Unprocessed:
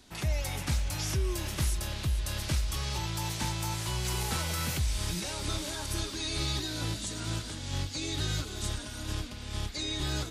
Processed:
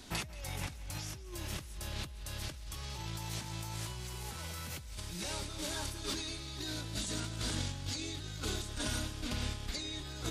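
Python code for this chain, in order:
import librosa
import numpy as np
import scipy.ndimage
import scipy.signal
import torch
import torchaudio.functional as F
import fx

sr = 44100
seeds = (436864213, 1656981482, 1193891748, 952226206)

y = fx.over_compress(x, sr, threshold_db=-40.0, ratio=-1.0)
y = fx.echo_feedback(y, sr, ms=180, feedback_pct=52, wet_db=-18)
y = y * 10.0 ** (-1.0 / 20.0)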